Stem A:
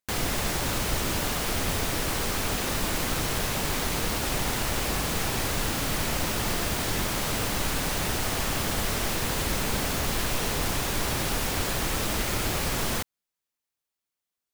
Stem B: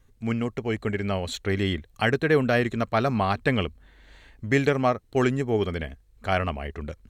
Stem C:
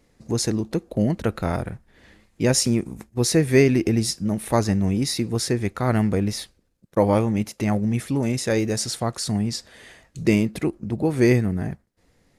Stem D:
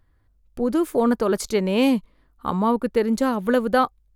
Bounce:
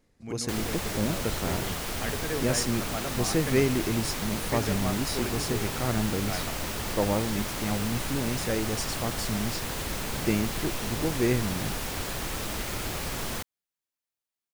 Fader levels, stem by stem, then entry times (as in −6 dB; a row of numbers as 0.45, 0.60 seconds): −5.0 dB, −12.5 dB, −8.0 dB, muted; 0.40 s, 0.00 s, 0.00 s, muted